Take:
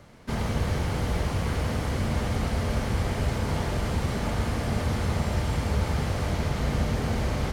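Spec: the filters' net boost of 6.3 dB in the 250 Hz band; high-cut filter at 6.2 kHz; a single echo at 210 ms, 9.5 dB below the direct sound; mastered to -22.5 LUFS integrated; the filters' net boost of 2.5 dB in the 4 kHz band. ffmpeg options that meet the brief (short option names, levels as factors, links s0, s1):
-af "lowpass=6200,equalizer=f=250:t=o:g=8,equalizer=f=4000:t=o:g=4,aecho=1:1:210:0.335,volume=1.41"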